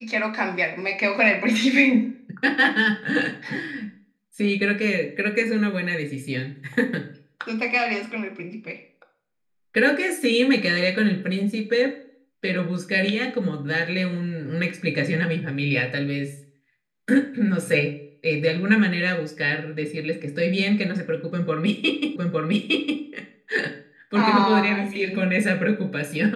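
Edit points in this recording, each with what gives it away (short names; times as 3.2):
22.16 repeat of the last 0.86 s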